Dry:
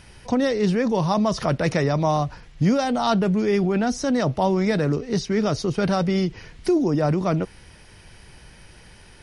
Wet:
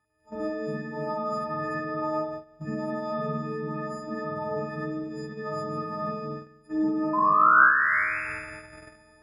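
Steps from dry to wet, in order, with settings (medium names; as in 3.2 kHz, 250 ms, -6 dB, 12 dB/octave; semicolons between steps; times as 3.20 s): partials quantised in pitch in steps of 6 st; recorder AGC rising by 19 dB/s; dynamic bell 600 Hz, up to -5 dB, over -35 dBFS, Q 2.1; feedback comb 280 Hz, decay 0.96 s, mix 50%; painted sound rise, 7.13–8.21 s, 1–2.7 kHz -20 dBFS; resonant high shelf 2.1 kHz -13.5 dB, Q 3; crackle 140 per s -51 dBFS; spring tank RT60 1.8 s, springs 48 ms, chirp 60 ms, DRR -6 dB; gate -25 dBFS, range -14 dB; high-pass 64 Hz; random flutter of the level, depth 55%; trim -7.5 dB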